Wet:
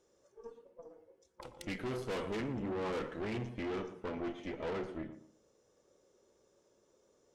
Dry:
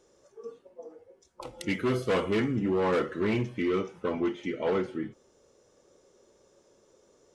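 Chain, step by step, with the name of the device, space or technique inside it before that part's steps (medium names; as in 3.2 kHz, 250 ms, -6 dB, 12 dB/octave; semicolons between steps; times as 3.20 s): rockabilly slapback (valve stage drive 31 dB, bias 0.8; tape echo 116 ms, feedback 33%, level -8 dB, low-pass 1 kHz); trim -3.5 dB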